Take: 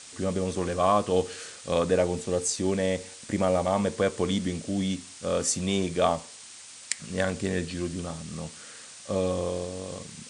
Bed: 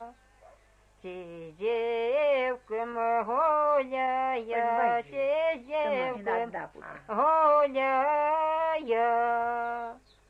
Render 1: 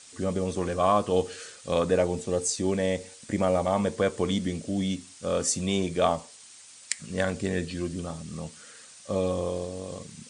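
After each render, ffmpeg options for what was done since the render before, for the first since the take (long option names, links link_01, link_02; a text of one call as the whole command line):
ffmpeg -i in.wav -af "afftdn=noise_reduction=6:noise_floor=-46" out.wav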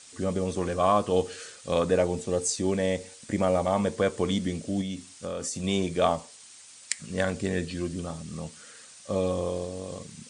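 ffmpeg -i in.wav -filter_complex "[0:a]asettb=1/sr,asplit=3[link_01][link_02][link_03];[link_01]atrim=end=4.814[link_04];[link_02]atrim=start=4.81:end=5.64,asetpts=PTS-STARTPTS,afade=type=in:duration=0.004:curve=qsin,afade=type=out:start_time=0.826:duration=0.004:curve=qsin,acompressor=threshold=-29dB:ratio=6:attack=3.2:release=140:knee=1:detection=peak[link_05];[link_03]atrim=start=5.636[link_06];[link_04][link_05]acrossfade=duration=0.004:curve1=hsin:curve2=qsin[link_07];[link_07][link_06]acrossfade=duration=0.004:curve1=qsin:curve2=hsin" out.wav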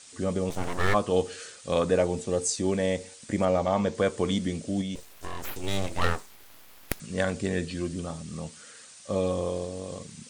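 ffmpeg -i in.wav -filter_complex "[0:a]asplit=3[link_01][link_02][link_03];[link_01]afade=type=out:start_time=0.49:duration=0.02[link_04];[link_02]aeval=exprs='abs(val(0))':channel_layout=same,afade=type=in:start_time=0.49:duration=0.02,afade=type=out:start_time=0.93:duration=0.02[link_05];[link_03]afade=type=in:start_time=0.93:duration=0.02[link_06];[link_04][link_05][link_06]amix=inputs=3:normalize=0,asettb=1/sr,asplit=3[link_07][link_08][link_09];[link_07]atrim=end=3.454[link_10];[link_08]atrim=start=3.45:end=3.95,asetpts=PTS-STARTPTS,afade=type=in:duration=0.004:curve=qsin,afade=type=out:start_time=0.496:duration=0.004:curve=qsin,lowpass=frequency=7000:width=0.5412,lowpass=frequency=7000:width=1.3066[link_11];[link_09]atrim=start=3.946[link_12];[link_10][link_11]acrossfade=duration=0.004:curve1=hsin:curve2=qsin[link_13];[link_13][link_12]acrossfade=duration=0.004:curve1=qsin:curve2=hsin,asettb=1/sr,asplit=3[link_14][link_15][link_16];[link_14]atrim=end=4.954[link_17];[link_15]atrim=start=4.95:end=7,asetpts=PTS-STARTPTS,afade=type=in:duration=0.004:curve=qsin,afade=type=out:start_time=2.046:duration=0.004:curve=qsin,aeval=exprs='abs(val(0))':channel_layout=same[link_18];[link_16]atrim=start=6.996[link_19];[link_17][link_18]acrossfade=duration=0.004:curve1=hsin:curve2=qsin[link_20];[link_20][link_19]acrossfade=duration=0.004:curve1=qsin:curve2=hsin" out.wav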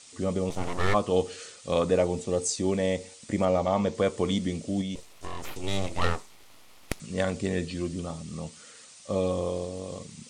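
ffmpeg -i in.wav -af "lowpass=9600,equalizer=frequency=1600:width_type=o:width=0.22:gain=-7.5" out.wav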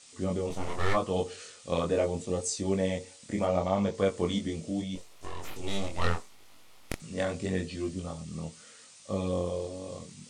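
ffmpeg -i in.wav -af "flanger=delay=20:depth=5.1:speed=0.77" out.wav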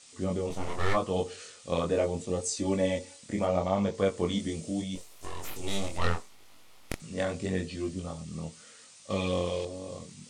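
ffmpeg -i in.wav -filter_complex "[0:a]asettb=1/sr,asplit=3[link_01][link_02][link_03];[link_01]atrim=end=2.564[link_04];[link_02]atrim=start=2.56:end=3.2,asetpts=PTS-STARTPTS,afade=type=in:duration=0.004:curve=qsin,afade=type=out:start_time=0.636:duration=0.004:curve=qsin,aecho=1:1:3.5:0.65,atrim=end_sample=28224[link_05];[link_03]atrim=start=3.196[link_06];[link_04][link_05]acrossfade=duration=0.004:curve1=hsin:curve2=qsin[link_07];[link_07][link_06]acrossfade=duration=0.004:curve1=qsin:curve2=hsin,asettb=1/sr,asplit=3[link_08][link_09][link_10];[link_08]atrim=end=4.394[link_11];[link_09]atrim=start=4.39:end=5.98,asetpts=PTS-STARTPTS,afade=type=in:duration=0.004:curve=qsin,afade=type=out:start_time=1.586:duration=0.004:curve=qsin,highshelf=frequency=8100:gain=11[link_12];[link_10]atrim=start=5.976[link_13];[link_11][link_12]acrossfade=duration=0.004:curve1=hsin:curve2=qsin[link_14];[link_14][link_13]acrossfade=duration=0.004:curve1=qsin:curve2=hsin,asettb=1/sr,asplit=3[link_15][link_16][link_17];[link_15]atrim=end=9.104[link_18];[link_16]atrim=start=9.1:end=9.65,asetpts=PTS-STARTPTS,afade=type=in:duration=0.004:curve=qsin,afade=type=out:start_time=0.546:duration=0.004:curve=qsin,equalizer=frequency=2600:width_type=o:width=1.7:gain=12.5[link_19];[link_17]atrim=start=9.646[link_20];[link_18][link_19]acrossfade=duration=0.004:curve1=hsin:curve2=qsin[link_21];[link_21][link_20]acrossfade=duration=0.004:curve1=qsin:curve2=hsin" out.wav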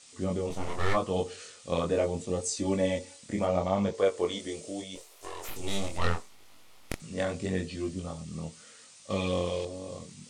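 ffmpeg -i in.wav -filter_complex "[0:a]asettb=1/sr,asplit=3[link_01][link_02][link_03];[link_01]atrim=end=3.934[link_04];[link_02]atrim=start=3.93:end=5.49,asetpts=PTS-STARTPTS,afade=type=in:duration=0.004:curve=qsin,afade=type=out:start_time=1.556:duration=0.004:curve=qsin,lowshelf=frequency=290:width_type=q:width=1.5:gain=-10[link_05];[link_03]atrim=start=5.486[link_06];[link_04][link_05]acrossfade=duration=0.004:curve1=hsin:curve2=qsin[link_07];[link_07][link_06]acrossfade=duration=0.004:curve1=qsin:curve2=hsin" out.wav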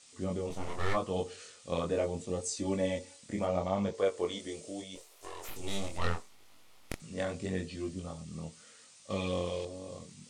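ffmpeg -i in.wav -af "volume=-4dB" out.wav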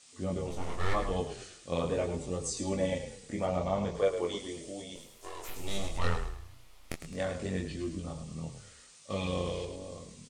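ffmpeg -i in.wav -filter_complex "[0:a]asplit=2[link_01][link_02];[link_02]adelay=12,volume=-10dB[link_03];[link_01][link_03]amix=inputs=2:normalize=0,asplit=2[link_04][link_05];[link_05]asplit=4[link_06][link_07][link_08][link_09];[link_06]adelay=106,afreqshift=-30,volume=-9dB[link_10];[link_07]adelay=212,afreqshift=-60,volume=-17.6dB[link_11];[link_08]adelay=318,afreqshift=-90,volume=-26.3dB[link_12];[link_09]adelay=424,afreqshift=-120,volume=-34.9dB[link_13];[link_10][link_11][link_12][link_13]amix=inputs=4:normalize=0[link_14];[link_04][link_14]amix=inputs=2:normalize=0" out.wav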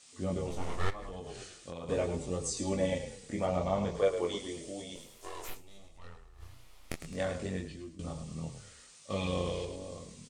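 ffmpeg -i in.wav -filter_complex "[0:a]asplit=3[link_01][link_02][link_03];[link_01]afade=type=out:start_time=0.89:duration=0.02[link_04];[link_02]acompressor=threshold=-38dB:ratio=8:attack=3.2:release=140:knee=1:detection=peak,afade=type=in:start_time=0.89:duration=0.02,afade=type=out:start_time=1.88:duration=0.02[link_05];[link_03]afade=type=in:start_time=1.88:duration=0.02[link_06];[link_04][link_05][link_06]amix=inputs=3:normalize=0,asplit=4[link_07][link_08][link_09][link_10];[link_07]atrim=end=5.94,asetpts=PTS-STARTPTS,afade=type=out:start_time=5.53:duration=0.41:curve=exp:silence=0.0944061[link_11];[link_08]atrim=start=5.94:end=6.02,asetpts=PTS-STARTPTS,volume=-20.5dB[link_12];[link_09]atrim=start=6.02:end=7.99,asetpts=PTS-STARTPTS,afade=type=in:duration=0.41:curve=exp:silence=0.0944061,afade=type=out:start_time=1.33:duration=0.64:silence=0.149624[link_13];[link_10]atrim=start=7.99,asetpts=PTS-STARTPTS,afade=type=in:duration=0.004:curve=hsin:silence=0.149624[link_14];[link_11][link_12][link_13][link_14]concat=n=4:v=0:a=1" out.wav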